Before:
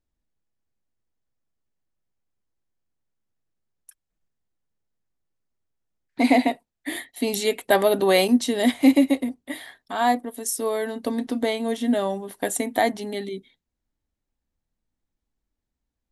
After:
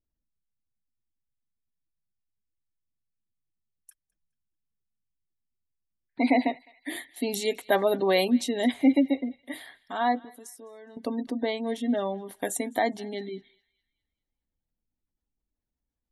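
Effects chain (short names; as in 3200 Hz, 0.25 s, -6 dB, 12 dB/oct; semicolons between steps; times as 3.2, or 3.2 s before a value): spectral gate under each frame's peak -30 dB strong; 10.19–10.97 compressor 12:1, threshold -39 dBFS, peak gain reduction 18.5 dB; narrowing echo 0.208 s, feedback 43%, band-pass 2800 Hz, level -21 dB; gain -4.5 dB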